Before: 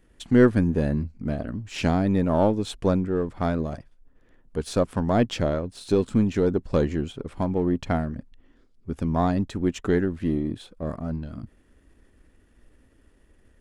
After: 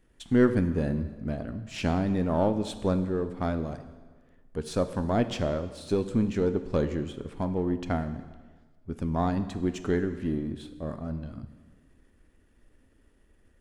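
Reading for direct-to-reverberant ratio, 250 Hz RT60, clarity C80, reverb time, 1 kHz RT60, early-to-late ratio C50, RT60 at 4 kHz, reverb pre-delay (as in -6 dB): 9.5 dB, 1.4 s, 13.5 dB, 1.4 s, 1.4 s, 12.0 dB, 1.3 s, 5 ms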